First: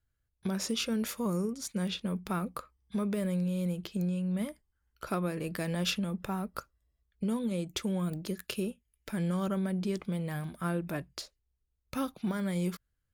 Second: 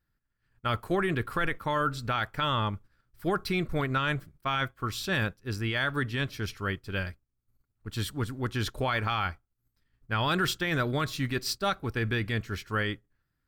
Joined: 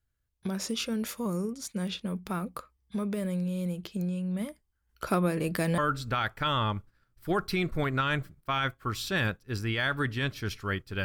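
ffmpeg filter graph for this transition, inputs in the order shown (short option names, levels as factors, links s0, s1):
-filter_complex "[0:a]asettb=1/sr,asplit=3[s0][s1][s2];[s0]atrim=end=4.894[s3];[s1]atrim=start=4.89:end=5.78,asetpts=PTS-STARTPTS,afade=t=in:d=0.004:c=qsin,afade=t=out:st=0.886:d=0.004:c=qsin,acontrast=44[s4];[s2]atrim=start=5.776[s5];[s3][s4]acrossfade=d=0.004:c1=hsin:c2=qsin[s6];[s6][s5]acrossfade=d=0.004:c1=qsin:c2=hsin,apad=whole_dur=11.04,atrim=end=11.04,atrim=end=5.782[s7];[1:a]atrim=start=1.748:end=7.01[s8];[s7][s8]acrossfade=d=0.004:c1=hsin:c2=hsin"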